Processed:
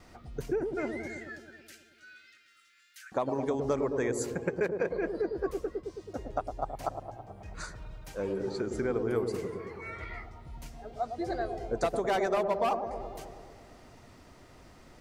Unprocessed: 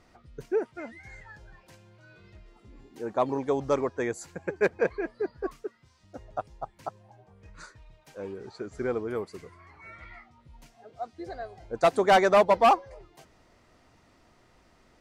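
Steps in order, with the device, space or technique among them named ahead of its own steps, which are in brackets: ASMR close-microphone chain (low shelf 190 Hz +7.5 dB; compressor 10:1, threshold -31 dBFS, peak gain reduction 16 dB; high shelf 8800 Hz +7 dB); gate with hold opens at -52 dBFS; 1.06–3.12 steep high-pass 1300 Hz 96 dB/oct; low shelf 200 Hz -5.5 dB; dark delay 0.108 s, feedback 68%, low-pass 670 Hz, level -4 dB; gain +4.5 dB

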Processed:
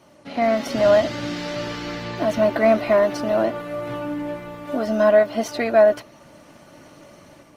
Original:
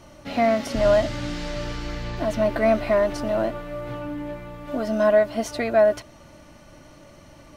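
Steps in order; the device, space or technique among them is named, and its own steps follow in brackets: dynamic EQ 8300 Hz, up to -6 dB, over -59 dBFS, Q 2.3; video call (HPF 150 Hz 12 dB/oct; AGC gain up to 7 dB; gain -2.5 dB; Opus 20 kbps 48000 Hz)

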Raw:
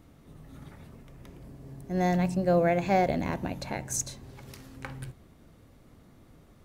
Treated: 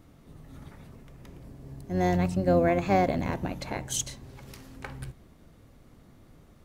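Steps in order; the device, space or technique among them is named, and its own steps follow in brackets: octave pedal (harmoniser -12 st -7 dB)

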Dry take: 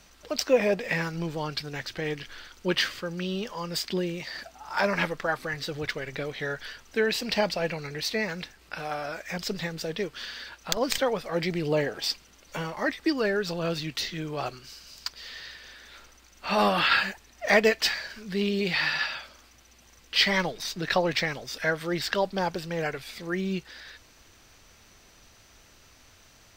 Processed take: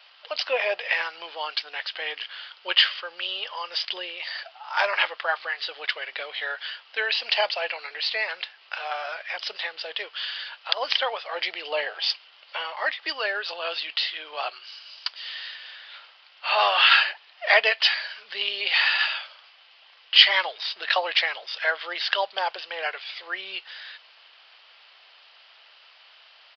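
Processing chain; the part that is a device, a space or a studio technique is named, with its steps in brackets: musical greeting card (downsampling 11025 Hz; HPF 650 Hz 24 dB/oct; bell 3000 Hz +9 dB 0.36 oct); gain +3.5 dB

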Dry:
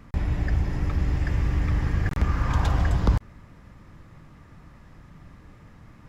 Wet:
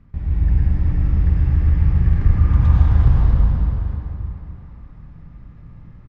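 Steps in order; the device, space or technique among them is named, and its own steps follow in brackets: cave (echo 0.381 s -9.5 dB; reverb RT60 3.7 s, pre-delay 84 ms, DRR -7 dB); LPF 5200 Hz 12 dB/oct; tone controls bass +12 dB, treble -4 dB; gain -12 dB

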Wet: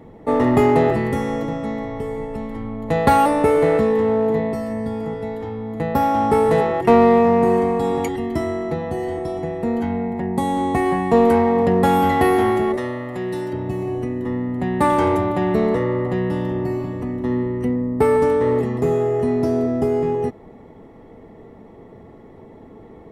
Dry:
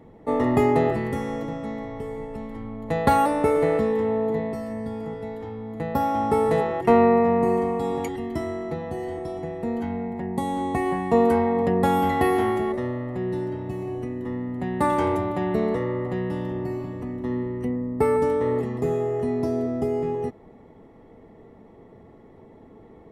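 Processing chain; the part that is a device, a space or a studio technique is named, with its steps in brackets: parallel distortion (in parallel at -6 dB: hard clip -21.5 dBFS, distortion -8 dB); 12.77–13.53 on the sum: tilt +2.5 dB/oct; gain +2.5 dB

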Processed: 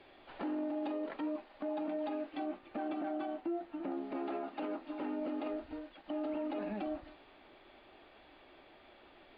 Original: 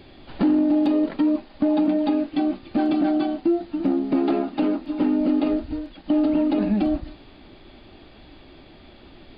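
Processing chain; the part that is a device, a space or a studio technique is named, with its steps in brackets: 2.46–3.91 air absorption 170 m; DJ mixer with the lows and highs turned down (three-band isolator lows -17 dB, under 410 Hz, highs -21 dB, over 3300 Hz; limiter -24.5 dBFS, peak gain reduction 7.5 dB); gain -6 dB

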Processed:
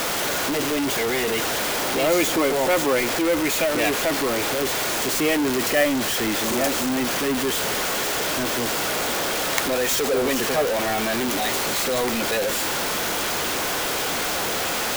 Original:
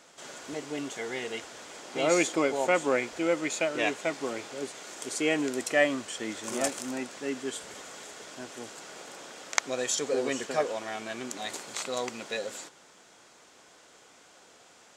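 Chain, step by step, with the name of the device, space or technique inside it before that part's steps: early CD player with a faulty converter (zero-crossing step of -18.5 dBFS; clock jitter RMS 0.027 ms)

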